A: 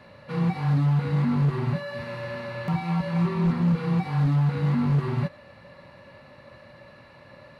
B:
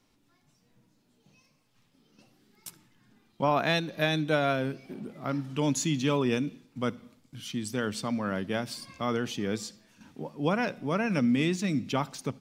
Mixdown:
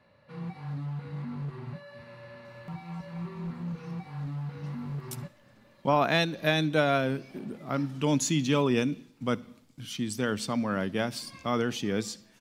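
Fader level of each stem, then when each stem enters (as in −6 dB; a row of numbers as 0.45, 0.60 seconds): −13.5, +1.5 decibels; 0.00, 2.45 seconds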